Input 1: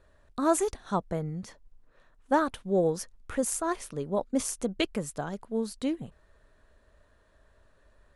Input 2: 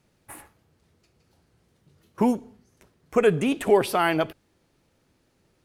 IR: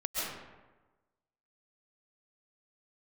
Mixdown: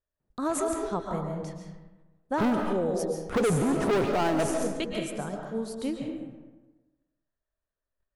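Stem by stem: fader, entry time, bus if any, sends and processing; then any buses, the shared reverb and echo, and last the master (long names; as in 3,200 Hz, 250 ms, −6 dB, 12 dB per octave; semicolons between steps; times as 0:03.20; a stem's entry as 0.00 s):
−6.0 dB, 0.00 s, send −3.5 dB, noise gate −54 dBFS, range −28 dB
−2.5 dB, 0.20 s, send −20 dB, low-pass filter 1,000 Hz 12 dB per octave; leveller curve on the samples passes 5; automatic ducking −7 dB, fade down 0.20 s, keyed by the first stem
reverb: on, RT60 1.2 s, pre-delay 95 ms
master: brickwall limiter −19 dBFS, peak gain reduction 8 dB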